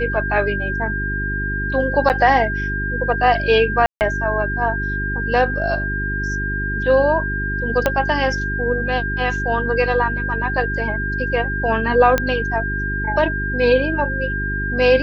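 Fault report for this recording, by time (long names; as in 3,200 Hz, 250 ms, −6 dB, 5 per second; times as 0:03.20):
mains hum 50 Hz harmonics 8 −25 dBFS
whistle 1,600 Hz −23 dBFS
0:02.09–0:02.10: drop-out 8.7 ms
0:03.86–0:04.01: drop-out 149 ms
0:07.86: click −3 dBFS
0:12.18: click −4 dBFS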